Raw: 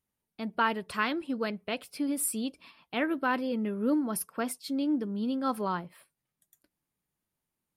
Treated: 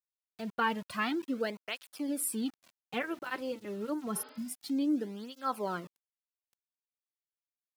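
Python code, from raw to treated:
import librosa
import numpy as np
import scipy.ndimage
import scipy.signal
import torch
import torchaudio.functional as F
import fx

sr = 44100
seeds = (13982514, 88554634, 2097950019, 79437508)

y = np.where(np.abs(x) >= 10.0 ** (-44.5 / 20.0), x, 0.0)
y = fx.spec_repair(y, sr, seeds[0], start_s=4.19, length_s=0.31, low_hz=250.0, high_hz=5100.0, source='both')
y = fx.flanger_cancel(y, sr, hz=0.28, depth_ms=4.7)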